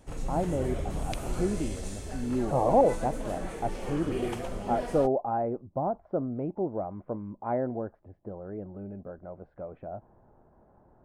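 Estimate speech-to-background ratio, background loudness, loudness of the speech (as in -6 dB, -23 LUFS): 6.0 dB, -37.0 LUFS, -31.0 LUFS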